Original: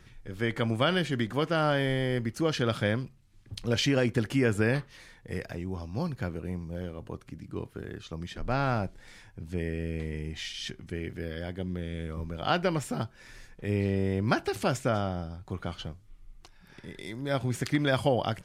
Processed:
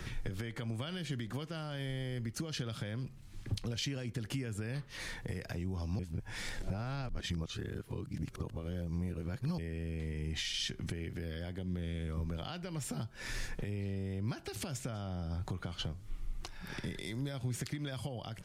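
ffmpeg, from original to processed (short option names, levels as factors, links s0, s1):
-filter_complex "[0:a]asplit=3[s0][s1][s2];[s0]atrim=end=5.992[s3];[s1]atrim=start=5.988:end=9.582,asetpts=PTS-STARTPTS,areverse[s4];[s2]atrim=start=9.578[s5];[s3][s4]acrossfade=d=0.004:c1=hsin:c2=hsin[s6];[s6][s5]acrossfade=d=0.004:c1=hsin:c2=hsin,acompressor=threshold=0.00794:ratio=2.5,alimiter=level_in=4.22:limit=0.0631:level=0:latency=1:release=276,volume=0.237,acrossover=split=190|3000[s7][s8][s9];[s8]acompressor=threshold=0.002:ratio=6[s10];[s7][s10][s9]amix=inputs=3:normalize=0,volume=3.76"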